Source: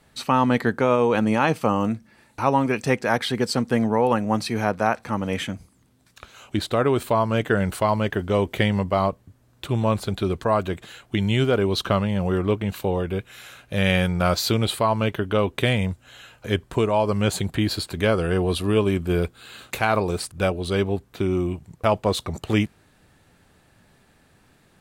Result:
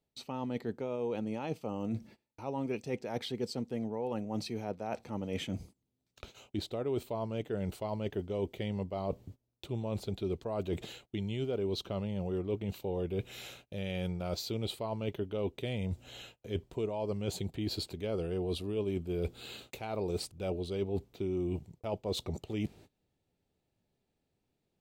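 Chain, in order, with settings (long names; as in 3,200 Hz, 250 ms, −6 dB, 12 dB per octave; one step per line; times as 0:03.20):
noise gate −47 dBFS, range −23 dB
parametric band 1,100 Hz −7 dB 0.3 octaves
reversed playback
downward compressor 10 to 1, threshold −33 dBFS, peak gain reduction 18.5 dB
reversed playback
graphic EQ with 15 bands 400 Hz +4 dB, 1,600 Hz −12 dB, 10,000 Hz −8 dB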